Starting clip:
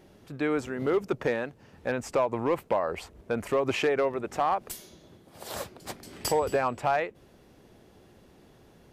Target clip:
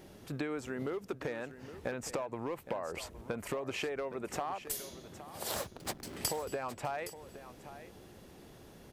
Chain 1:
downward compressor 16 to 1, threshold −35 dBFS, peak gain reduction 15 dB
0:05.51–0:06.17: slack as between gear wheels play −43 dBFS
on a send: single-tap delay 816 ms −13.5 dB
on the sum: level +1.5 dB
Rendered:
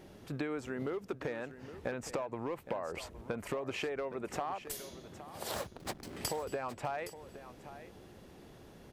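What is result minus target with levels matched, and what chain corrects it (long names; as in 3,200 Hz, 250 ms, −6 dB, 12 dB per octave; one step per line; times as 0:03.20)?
8,000 Hz band −3.5 dB
downward compressor 16 to 1, threshold −35 dBFS, peak gain reduction 15 dB
high-shelf EQ 5,700 Hz +6 dB
0:05.51–0:06.17: slack as between gear wheels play −43 dBFS
on a send: single-tap delay 816 ms −13.5 dB
on the sum: level +1.5 dB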